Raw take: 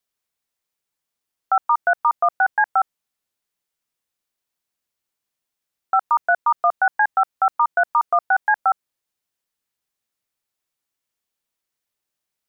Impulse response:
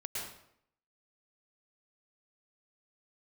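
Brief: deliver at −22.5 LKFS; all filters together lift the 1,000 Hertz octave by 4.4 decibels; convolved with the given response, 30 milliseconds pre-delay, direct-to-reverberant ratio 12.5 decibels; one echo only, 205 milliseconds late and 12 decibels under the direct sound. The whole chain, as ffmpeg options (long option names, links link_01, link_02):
-filter_complex "[0:a]equalizer=frequency=1000:width_type=o:gain=6,aecho=1:1:205:0.251,asplit=2[link_01][link_02];[1:a]atrim=start_sample=2205,adelay=30[link_03];[link_02][link_03]afir=irnorm=-1:irlink=0,volume=-14dB[link_04];[link_01][link_04]amix=inputs=2:normalize=0,volume=-7dB"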